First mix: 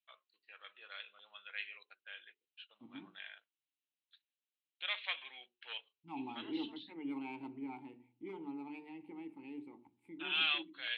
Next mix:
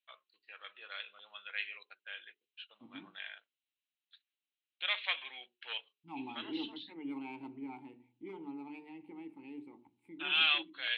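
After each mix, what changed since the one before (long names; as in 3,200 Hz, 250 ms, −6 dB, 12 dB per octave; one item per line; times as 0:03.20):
first voice +4.5 dB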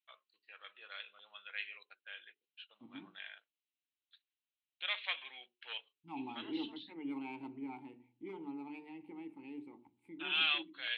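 first voice −3.5 dB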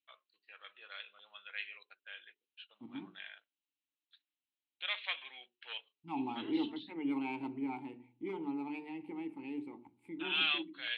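second voice +6.0 dB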